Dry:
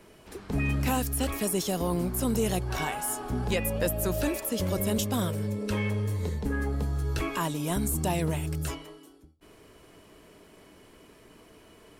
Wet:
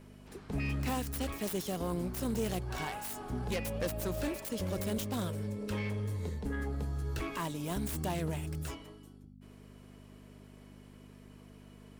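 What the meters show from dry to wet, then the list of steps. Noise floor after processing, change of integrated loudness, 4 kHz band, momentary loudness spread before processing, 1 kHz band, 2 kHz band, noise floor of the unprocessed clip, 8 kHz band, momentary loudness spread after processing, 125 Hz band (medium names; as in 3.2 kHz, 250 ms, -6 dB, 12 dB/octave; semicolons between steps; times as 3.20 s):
-54 dBFS, -7.0 dB, -7.0 dB, 4 LU, -7.0 dB, -7.0 dB, -55 dBFS, -10.5 dB, 20 LU, -6.5 dB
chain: self-modulated delay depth 0.1 ms; mains buzz 50 Hz, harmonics 5, -48 dBFS 0 dB/octave; trim -6.5 dB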